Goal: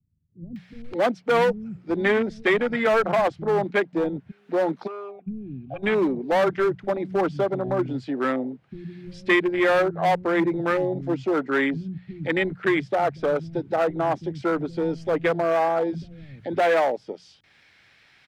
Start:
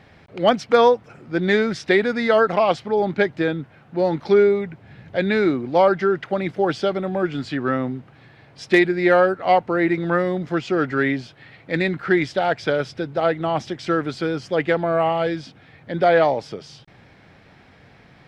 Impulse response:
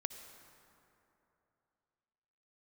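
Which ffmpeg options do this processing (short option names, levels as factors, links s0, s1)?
-filter_complex "[0:a]afwtdn=0.0631,bandreject=f=60:t=h:w=6,bandreject=f=120:t=h:w=6,bandreject=f=180:t=h:w=6,acrossover=split=130|1600[s0][s1][s2];[s1]asoftclip=type=hard:threshold=0.133[s3];[s2]acompressor=mode=upward:threshold=0.00794:ratio=2.5[s4];[s0][s3][s4]amix=inputs=3:normalize=0,asplit=3[s5][s6][s7];[s5]afade=t=out:st=4.3:d=0.02[s8];[s6]asplit=3[s9][s10][s11];[s9]bandpass=f=730:t=q:w=8,volume=1[s12];[s10]bandpass=f=1090:t=q:w=8,volume=0.501[s13];[s11]bandpass=f=2440:t=q:w=8,volume=0.355[s14];[s12][s13][s14]amix=inputs=3:normalize=0,afade=t=in:st=4.3:d=0.02,afade=t=out:st=5.26:d=0.02[s15];[s7]afade=t=in:st=5.26:d=0.02[s16];[s8][s15][s16]amix=inputs=3:normalize=0,acrossover=split=190[s17][s18];[s18]adelay=560[s19];[s17][s19]amix=inputs=2:normalize=0"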